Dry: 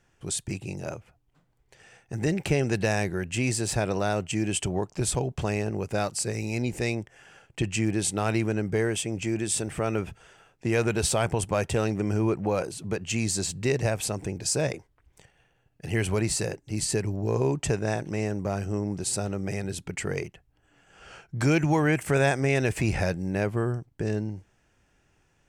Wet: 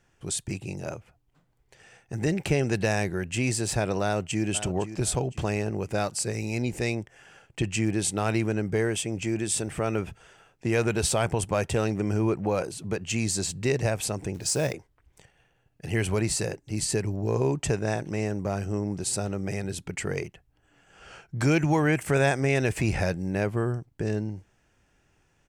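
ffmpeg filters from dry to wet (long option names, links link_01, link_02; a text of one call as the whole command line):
ffmpeg -i in.wav -filter_complex "[0:a]asplit=2[link_01][link_02];[link_02]afade=type=in:start_time=4.03:duration=0.01,afade=type=out:start_time=4.45:duration=0.01,aecho=0:1:510|1020|1530|2040:0.237137|0.0829981|0.0290493|0.0101673[link_03];[link_01][link_03]amix=inputs=2:normalize=0,asettb=1/sr,asplit=3[link_04][link_05][link_06];[link_04]atrim=end=14.344[link_07];[link_05]atrim=start=14.34:end=14.74,asetpts=PTS-STARTPTS,afade=type=in:duration=0.004:curve=qsin,afade=type=out:start_time=0.396:duration=0.004:curve=qsin,acrusher=bits=5:mode=log:mix=0:aa=0.000001[link_08];[link_06]atrim=start=14.736[link_09];[link_07][link_08]acrossfade=duration=0.004:curve1=hsin:curve2=qsin[link_10];[link_10][link_09]acrossfade=duration=0.004:curve1=qsin:curve2=hsin" out.wav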